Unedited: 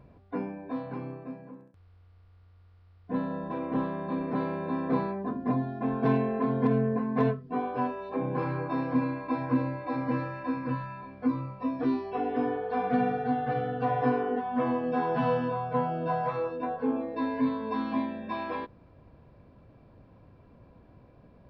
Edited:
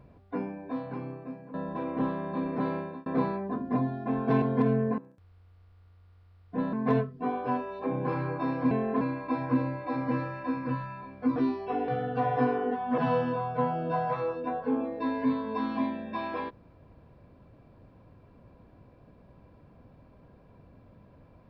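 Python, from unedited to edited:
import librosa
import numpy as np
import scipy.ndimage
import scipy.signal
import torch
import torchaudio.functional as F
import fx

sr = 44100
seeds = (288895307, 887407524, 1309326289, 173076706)

y = fx.edit(x, sr, fx.move(start_s=1.54, length_s=1.75, to_s=7.03),
    fx.fade_out_span(start_s=4.51, length_s=0.3),
    fx.move(start_s=6.17, length_s=0.3, to_s=9.01),
    fx.cut(start_s=11.36, length_s=0.45),
    fx.cut(start_s=12.33, length_s=1.2),
    fx.cut(start_s=14.63, length_s=0.51), tone=tone)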